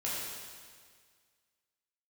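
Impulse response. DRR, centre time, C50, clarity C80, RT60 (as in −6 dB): −8.0 dB, 116 ms, −2.0 dB, 0.0 dB, 1.8 s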